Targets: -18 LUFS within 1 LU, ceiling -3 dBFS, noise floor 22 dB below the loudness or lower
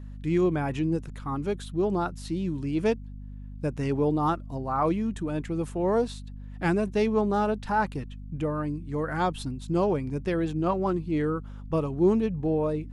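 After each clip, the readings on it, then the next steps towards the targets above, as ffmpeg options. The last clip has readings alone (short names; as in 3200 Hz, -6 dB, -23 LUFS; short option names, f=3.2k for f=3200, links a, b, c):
hum 50 Hz; harmonics up to 250 Hz; hum level -37 dBFS; loudness -28.0 LUFS; peak -11.0 dBFS; loudness target -18.0 LUFS
-> -af "bandreject=f=50:t=h:w=4,bandreject=f=100:t=h:w=4,bandreject=f=150:t=h:w=4,bandreject=f=200:t=h:w=4,bandreject=f=250:t=h:w=4"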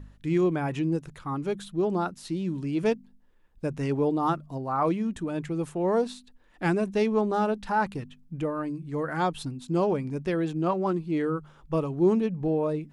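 hum none; loudness -28.0 LUFS; peak -11.5 dBFS; loudness target -18.0 LUFS
-> -af "volume=10dB,alimiter=limit=-3dB:level=0:latency=1"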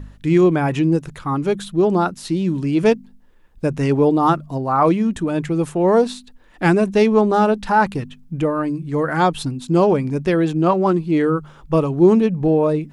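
loudness -18.0 LUFS; peak -3.0 dBFS; noise floor -47 dBFS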